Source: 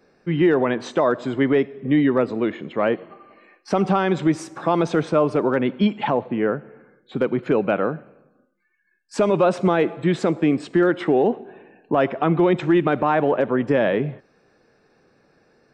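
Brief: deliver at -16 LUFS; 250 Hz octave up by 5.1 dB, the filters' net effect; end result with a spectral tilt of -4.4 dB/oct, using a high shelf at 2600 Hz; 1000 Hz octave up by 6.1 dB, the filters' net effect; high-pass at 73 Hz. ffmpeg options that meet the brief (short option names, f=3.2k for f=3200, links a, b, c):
-af "highpass=73,equalizer=f=250:t=o:g=6.5,equalizer=f=1k:t=o:g=8.5,highshelf=f=2.6k:g=-5,volume=0.5dB"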